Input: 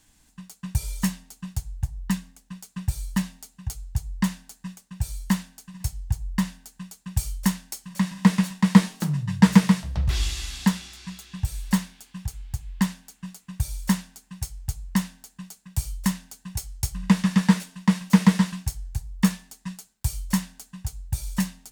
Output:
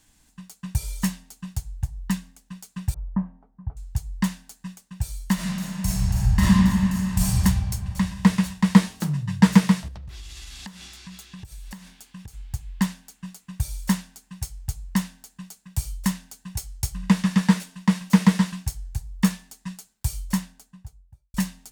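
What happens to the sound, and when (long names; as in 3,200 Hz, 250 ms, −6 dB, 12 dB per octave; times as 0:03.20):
0:02.94–0:03.77: low-pass filter 1,100 Hz 24 dB per octave
0:05.34–0:07.26: thrown reverb, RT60 2.7 s, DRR −10 dB
0:09.88–0:12.37: downward compressor 16 to 1, threshold −35 dBFS
0:20.13–0:21.34: fade out and dull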